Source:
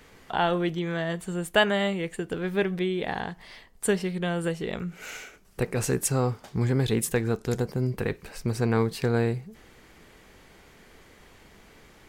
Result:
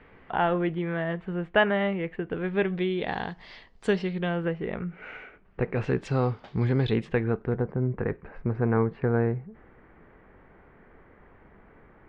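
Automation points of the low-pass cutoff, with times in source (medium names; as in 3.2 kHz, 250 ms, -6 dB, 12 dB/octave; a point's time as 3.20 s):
low-pass 24 dB/octave
2.29 s 2.5 kHz
3.26 s 5 kHz
3.90 s 5 kHz
4.55 s 2.3 kHz
5.63 s 2.3 kHz
6.09 s 3.9 kHz
6.84 s 3.9 kHz
7.54 s 1.8 kHz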